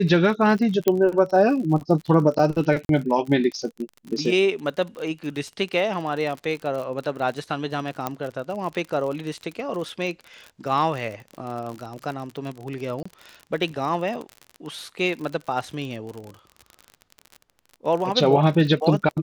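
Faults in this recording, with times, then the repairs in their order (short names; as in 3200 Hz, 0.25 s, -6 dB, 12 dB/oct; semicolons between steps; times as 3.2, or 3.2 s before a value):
crackle 46/s -30 dBFS
0.88 pop -6 dBFS
2.85–2.89 gap 42 ms
8.07 pop -11 dBFS
13.03–13.05 gap 25 ms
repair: de-click; interpolate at 2.85, 42 ms; interpolate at 13.03, 25 ms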